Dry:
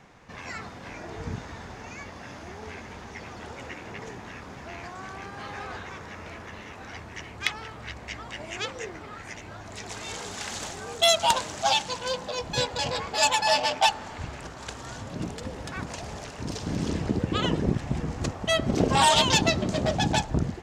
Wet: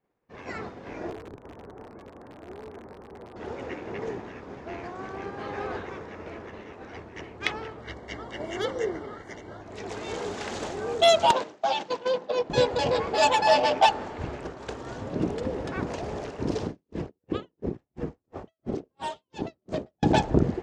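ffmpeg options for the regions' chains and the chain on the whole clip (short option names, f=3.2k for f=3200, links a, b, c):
-filter_complex "[0:a]asettb=1/sr,asplit=3[a][b][c];[a]atrim=end=1.104[d];[b]atrim=start=1.1:end=3.36,asetpts=PTS-STARTPTS,afade=t=in:d=0.004:c=qsin,afade=t=out:st=2.256:d=0.004:c=qsin,lowpass=f=1.3k:w=0.5412,lowpass=f=1.3k:w=1.3066,acompressor=threshold=-38dB:ratio=8:attack=3.2:release=140:knee=1:detection=peak,aeval=exprs='(mod(59.6*val(0)+1,2)-1)/59.6':c=same[e];[c]atrim=start=3.356[f];[d][e]acrossfade=d=0.004:c1=hsin:c2=qsin[g];[g][f]acrossfade=d=0.004:c1=qsin:c2=hsin,asettb=1/sr,asplit=3[h][i][j];[h]atrim=end=7.814[k];[i]atrim=start=7.81:end=9.62,asetpts=PTS-STARTPTS,afade=t=in:d=0.004:c=qsin,afade=t=out:st=1.806:d=0.004:c=qsin,highshelf=f=4.9k:g=3.5,volume=22dB,asoftclip=hard,volume=-22dB,asuperstop=centerf=2500:order=12:qfactor=5.7[l];[j]atrim=start=9.616[m];[k][l]acrossfade=d=0.004:c1=hsin:c2=qsin[n];[n][m]acrossfade=d=0.004:c1=qsin:c2=hsin,asettb=1/sr,asplit=3[o][p][q];[o]atrim=end=11.314[r];[p]atrim=start=11.31:end=12.5,asetpts=PTS-STARTPTS,afade=t=in:d=0.004:c=qsin,afade=t=out:st=1.186:d=0.004:c=qsin,agate=range=-9dB:threshold=-34dB:ratio=16:release=100:detection=peak,acompressor=threshold=-25dB:ratio=3:attack=3.2:release=140:knee=1:detection=peak,highpass=180,lowpass=5.9k[s];[q]atrim=start=12.496[t];[r][s]acrossfade=d=0.004:c1=hsin:c2=qsin[u];[u][t]acrossfade=d=0.004:c1=qsin:c2=hsin,asettb=1/sr,asplit=3[v][w][x];[v]atrim=end=16.654[y];[w]atrim=start=16.65:end=20.03,asetpts=PTS-STARTPTS,afade=t=in:d=0.004:c=qsin,afade=t=out:st=3.376:d=0.004:c=qsin,acompressor=threshold=-28dB:ratio=10:attack=3.2:release=140:knee=1:detection=peak,aeval=exprs='val(0)*pow(10,-32*(0.5-0.5*cos(2*PI*2.9*n/s))/20)':c=same[z];[x]atrim=start=20.026[aa];[y][z]acrossfade=d=0.004:c1=hsin:c2=qsin[ab];[ab][aa]acrossfade=d=0.004:c1=qsin:c2=hsin,equalizer=f=400:w=1:g=10.5,agate=range=-33dB:threshold=-32dB:ratio=3:detection=peak,aemphasis=mode=reproduction:type=50fm"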